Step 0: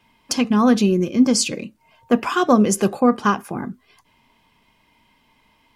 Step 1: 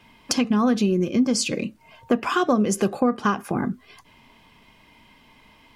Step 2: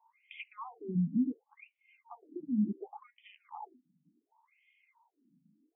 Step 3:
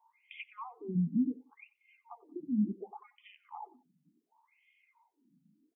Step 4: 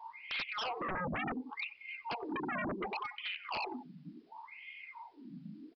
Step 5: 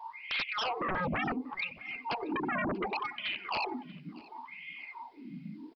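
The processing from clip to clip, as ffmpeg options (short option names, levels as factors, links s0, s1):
-af "equalizer=f=930:w=6.5:g=-3.5,acompressor=threshold=0.0398:ratio=3,highshelf=f=6400:g=-4.5,volume=2.24"
-filter_complex "[0:a]asplit=3[s0][s1][s2];[s0]bandpass=f=300:t=q:w=8,volume=1[s3];[s1]bandpass=f=870:t=q:w=8,volume=0.501[s4];[s2]bandpass=f=2240:t=q:w=8,volume=0.355[s5];[s3][s4][s5]amix=inputs=3:normalize=0,lowshelf=f=210:t=q:w=3:g=10.5,afftfilt=real='re*between(b*sr/1024,200*pow(2600/200,0.5+0.5*sin(2*PI*0.69*pts/sr))/1.41,200*pow(2600/200,0.5+0.5*sin(2*PI*0.69*pts/sr))*1.41)':imag='im*between(b*sr/1024,200*pow(2600/200,0.5+0.5*sin(2*PI*0.69*pts/sr))/1.41,200*pow(2600/200,0.5+0.5*sin(2*PI*0.69*pts/sr))*1.41)':win_size=1024:overlap=0.75,volume=1.26"
-af "aecho=1:1:91|182:0.0944|0.0283"
-af "acompressor=threshold=0.00447:ratio=2,aresample=11025,aeval=exprs='0.0211*sin(PI/2*7.08*val(0)/0.0211)':c=same,aresample=44100"
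-af "aecho=1:1:637|1274:0.0794|0.0262,volume=1.68"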